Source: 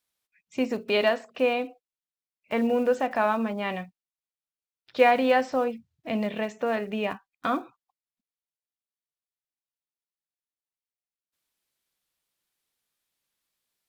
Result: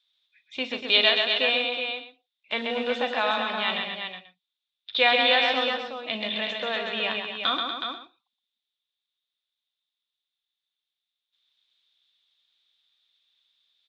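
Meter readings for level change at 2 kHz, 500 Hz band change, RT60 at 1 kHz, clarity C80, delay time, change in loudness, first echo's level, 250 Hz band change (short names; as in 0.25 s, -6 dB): +6.5 dB, -3.5 dB, none, none, 41 ms, +2.0 dB, -14.0 dB, -7.5 dB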